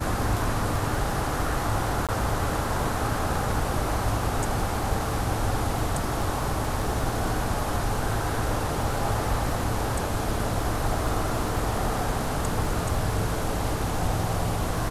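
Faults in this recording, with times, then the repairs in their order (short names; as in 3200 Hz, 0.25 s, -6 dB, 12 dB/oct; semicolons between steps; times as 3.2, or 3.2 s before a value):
crackle 26/s -33 dBFS
2.07–2.09 gap 17 ms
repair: de-click; interpolate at 2.07, 17 ms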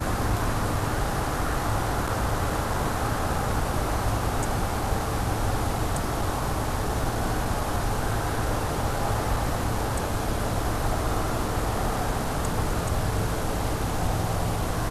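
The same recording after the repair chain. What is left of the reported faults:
none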